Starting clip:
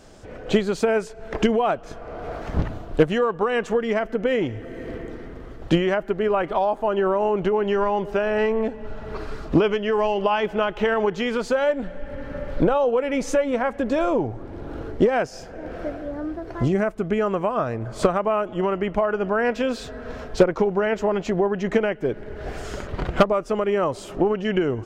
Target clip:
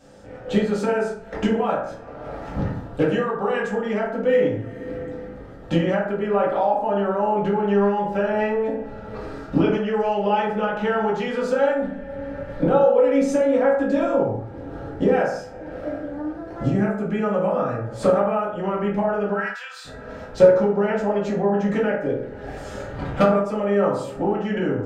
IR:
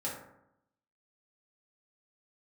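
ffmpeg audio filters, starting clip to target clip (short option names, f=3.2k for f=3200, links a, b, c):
-filter_complex "[0:a]asplit=3[a][b][c];[a]afade=t=out:st=19.32:d=0.02[d];[b]highpass=f=1.2k:w=0.5412,highpass=f=1.2k:w=1.3066,afade=t=in:st=19.32:d=0.02,afade=t=out:st=19.84:d=0.02[e];[c]afade=t=in:st=19.84:d=0.02[f];[d][e][f]amix=inputs=3:normalize=0[g];[1:a]atrim=start_sample=2205,afade=t=out:st=0.27:d=0.01,atrim=end_sample=12348[h];[g][h]afir=irnorm=-1:irlink=0,volume=-3.5dB"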